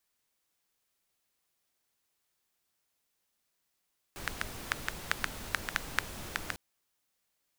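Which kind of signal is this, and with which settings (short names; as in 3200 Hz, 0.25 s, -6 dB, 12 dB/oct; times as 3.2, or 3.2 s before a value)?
rain from filtered ticks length 2.40 s, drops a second 5.1, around 1600 Hz, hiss -3 dB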